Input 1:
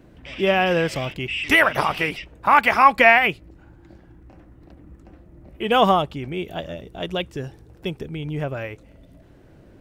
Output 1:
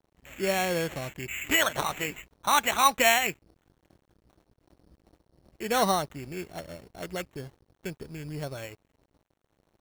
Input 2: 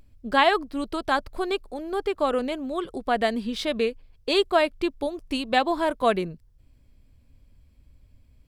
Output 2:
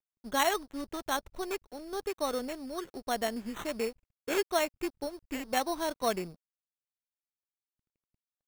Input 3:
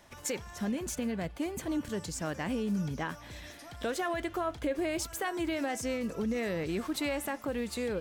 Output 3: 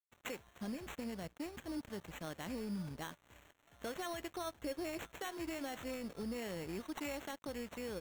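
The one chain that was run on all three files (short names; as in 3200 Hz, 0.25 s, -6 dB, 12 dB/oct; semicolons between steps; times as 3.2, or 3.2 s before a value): sample-and-hold 9×; crossover distortion -45.5 dBFS; gain -8 dB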